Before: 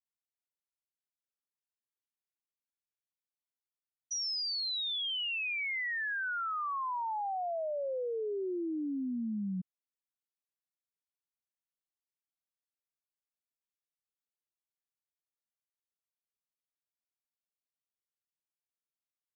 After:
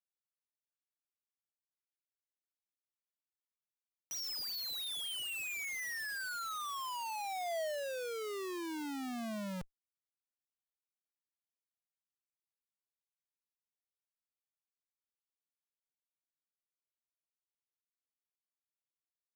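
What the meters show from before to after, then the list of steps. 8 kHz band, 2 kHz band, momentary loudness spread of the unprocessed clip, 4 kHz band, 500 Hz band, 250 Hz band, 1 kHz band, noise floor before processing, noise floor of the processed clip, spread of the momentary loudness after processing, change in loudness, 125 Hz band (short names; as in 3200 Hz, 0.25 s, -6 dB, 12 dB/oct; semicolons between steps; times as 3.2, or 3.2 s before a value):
n/a, -5.5 dB, 4 LU, -5.5 dB, -4.5 dB, -6.5 dB, -5.0 dB, under -85 dBFS, under -85 dBFS, 4 LU, -5.0 dB, -6.0 dB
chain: Schmitt trigger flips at -42.5 dBFS; dynamic EQ 650 Hz, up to +5 dB, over -58 dBFS, Q 5.2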